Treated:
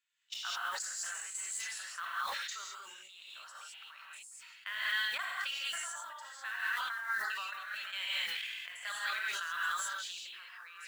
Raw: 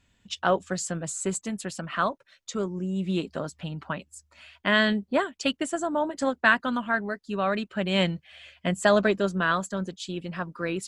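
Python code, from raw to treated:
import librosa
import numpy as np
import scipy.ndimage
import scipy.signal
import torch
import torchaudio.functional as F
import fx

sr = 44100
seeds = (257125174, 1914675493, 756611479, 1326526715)

y = scipy.signal.sosfilt(scipy.signal.butter(4, 1300.0, 'highpass', fs=sr, output='sos'), x)
y = fx.level_steps(y, sr, step_db=16)
y = fx.mod_noise(y, sr, seeds[0], snr_db=22)
y = fx.rev_gated(y, sr, seeds[1], gate_ms=230, shape='rising', drr_db=-7.0)
y = fx.sustainer(y, sr, db_per_s=23.0)
y = F.gain(torch.from_numpy(y), -8.5).numpy()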